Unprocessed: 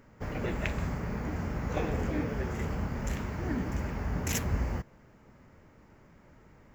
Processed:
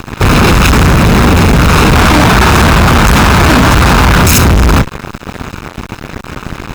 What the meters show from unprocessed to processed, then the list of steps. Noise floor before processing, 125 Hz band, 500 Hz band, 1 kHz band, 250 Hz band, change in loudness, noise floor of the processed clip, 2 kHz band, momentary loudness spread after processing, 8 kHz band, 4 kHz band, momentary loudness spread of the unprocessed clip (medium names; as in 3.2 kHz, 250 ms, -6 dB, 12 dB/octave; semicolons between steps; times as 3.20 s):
-58 dBFS, +26.0 dB, +24.5 dB, +31.5 dB, +25.5 dB, +27.0 dB, -29 dBFS, +30.0 dB, 18 LU, +26.5 dB, +34.0 dB, 4 LU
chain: comb filter that takes the minimum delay 0.78 ms; time-frequency box 1.95–4.22 s, 600–1800 Hz +6 dB; fuzz box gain 49 dB, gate -56 dBFS; trim +8.5 dB